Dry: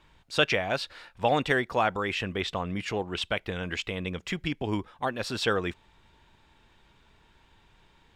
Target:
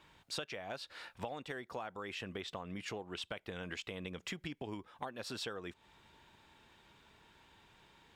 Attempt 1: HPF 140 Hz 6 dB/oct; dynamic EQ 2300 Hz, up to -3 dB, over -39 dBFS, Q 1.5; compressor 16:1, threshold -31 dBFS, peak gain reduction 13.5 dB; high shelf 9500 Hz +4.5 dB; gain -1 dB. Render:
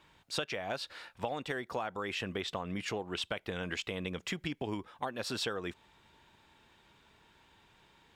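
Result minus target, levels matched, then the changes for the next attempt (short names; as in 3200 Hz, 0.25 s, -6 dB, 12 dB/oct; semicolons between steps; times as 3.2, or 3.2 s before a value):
compressor: peak gain reduction -6.5 dB
change: compressor 16:1, threshold -38 dBFS, peak gain reduction 20.5 dB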